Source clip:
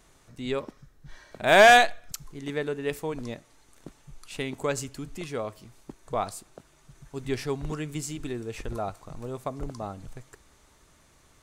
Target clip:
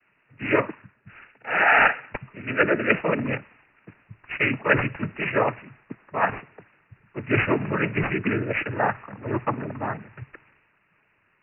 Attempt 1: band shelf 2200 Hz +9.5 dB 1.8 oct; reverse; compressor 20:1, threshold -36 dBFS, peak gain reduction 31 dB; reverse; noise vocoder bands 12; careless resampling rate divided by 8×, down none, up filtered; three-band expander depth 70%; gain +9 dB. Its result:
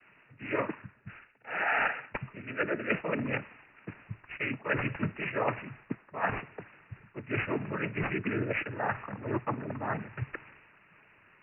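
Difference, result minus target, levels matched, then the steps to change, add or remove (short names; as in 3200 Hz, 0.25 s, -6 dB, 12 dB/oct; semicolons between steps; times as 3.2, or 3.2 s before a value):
compressor: peak gain reduction +10 dB
change: compressor 20:1, threshold -25.5 dBFS, peak gain reduction 21 dB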